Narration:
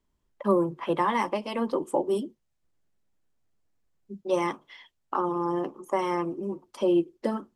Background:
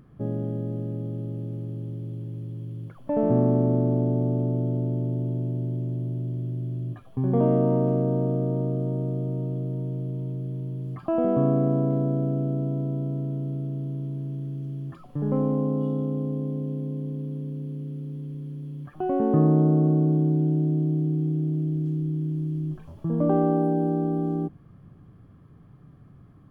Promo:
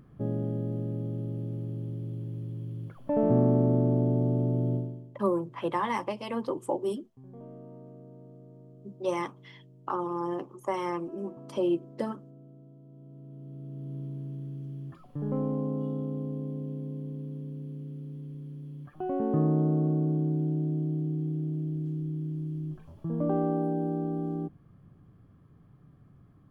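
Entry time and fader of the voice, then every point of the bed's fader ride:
4.75 s, -4.0 dB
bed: 4.75 s -2 dB
5.14 s -25.5 dB
12.81 s -25.5 dB
13.97 s -6 dB

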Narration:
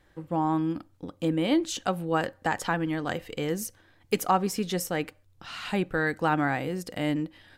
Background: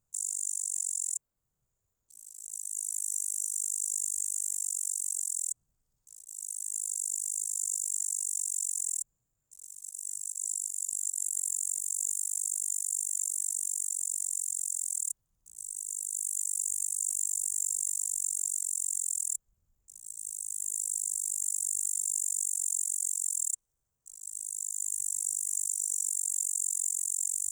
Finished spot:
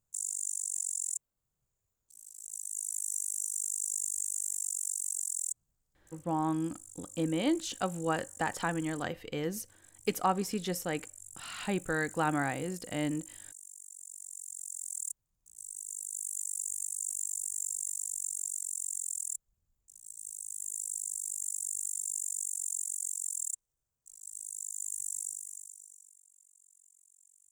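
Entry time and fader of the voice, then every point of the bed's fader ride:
5.95 s, -5.0 dB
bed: 5.91 s -2 dB
6.43 s -17.5 dB
13.83 s -17.5 dB
15.08 s -4.5 dB
25.2 s -4.5 dB
26.28 s -32.5 dB

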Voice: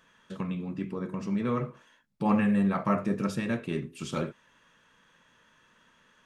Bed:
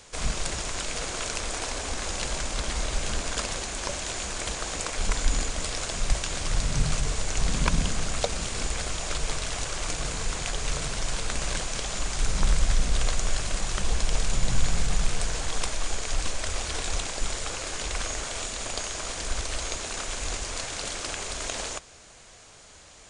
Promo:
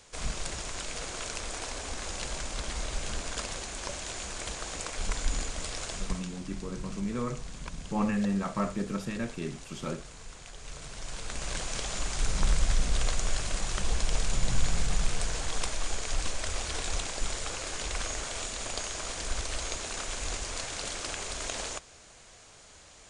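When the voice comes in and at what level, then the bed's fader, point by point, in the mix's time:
5.70 s, -4.0 dB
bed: 5.94 s -5.5 dB
6.38 s -16.5 dB
10.51 s -16.5 dB
11.72 s -3 dB

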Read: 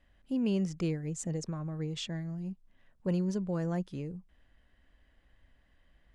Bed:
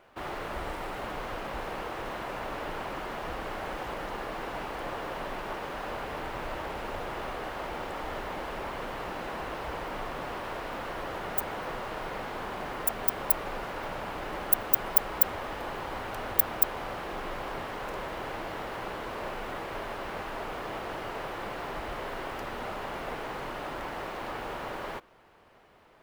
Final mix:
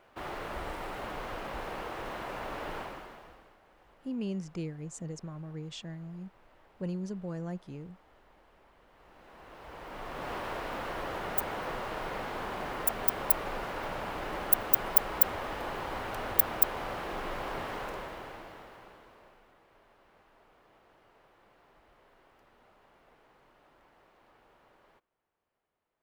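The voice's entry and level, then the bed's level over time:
3.75 s, -5.0 dB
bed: 2.78 s -2.5 dB
3.6 s -26.5 dB
8.84 s -26.5 dB
10.32 s -0.5 dB
17.77 s -0.5 dB
19.56 s -26.5 dB

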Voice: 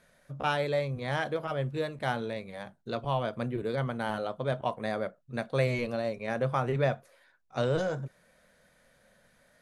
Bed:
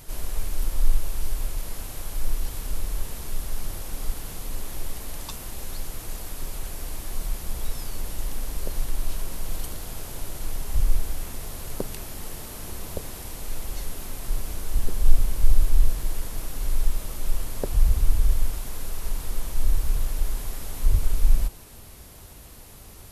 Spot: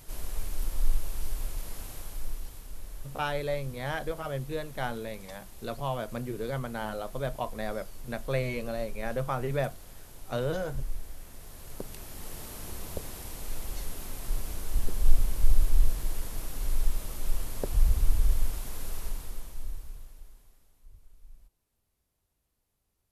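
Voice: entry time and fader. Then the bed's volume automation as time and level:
2.75 s, -2.5 dB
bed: 1.91 s -5.5 dB
2.67 s -13.5 dB
11.24 s -13.5 dB
12.43 s -4 dB
18.97 s -4 dB
20.83 s -33.5 dB

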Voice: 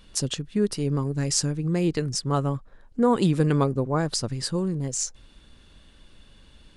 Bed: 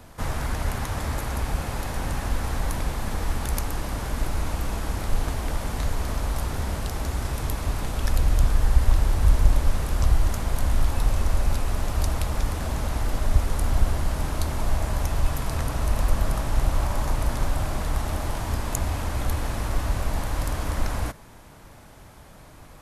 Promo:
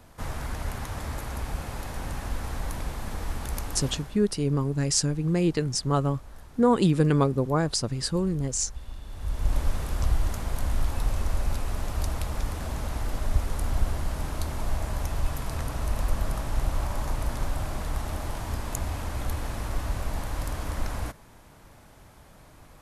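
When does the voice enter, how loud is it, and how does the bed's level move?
3.60 s, 0.0 dB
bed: 3.89 s -5.5 dB
4.24 s -21 dB
9.01 s -21 dB
9.57 s -4.5 dB

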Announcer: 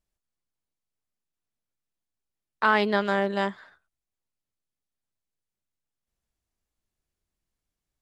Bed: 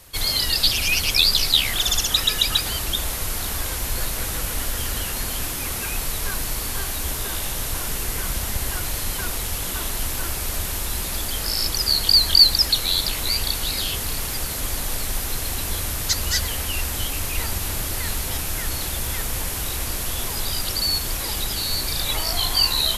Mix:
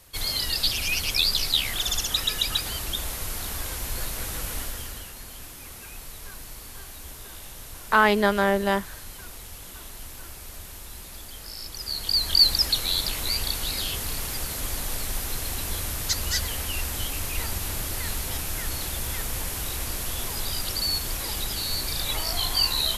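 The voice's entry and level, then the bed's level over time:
5.30 s, +3.0 dB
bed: 4.57 s -5.5 dB
5.15 s -14.5 dB
11.67 s -14.5 dB
12.47 s -4 dB

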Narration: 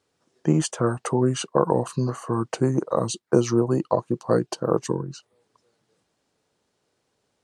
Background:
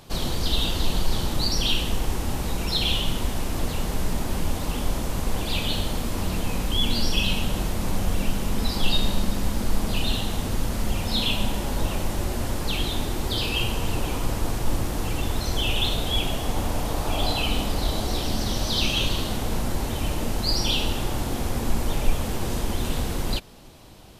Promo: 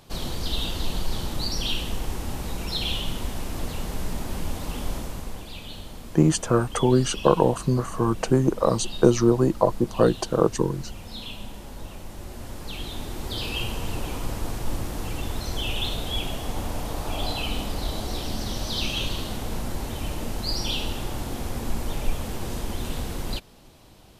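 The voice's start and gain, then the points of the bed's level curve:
5.70 s, +2.0 dB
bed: 4.96 s -4 dB
5.53 s -13 dB
12.03 s -13 dB
13.49 s -4 dB

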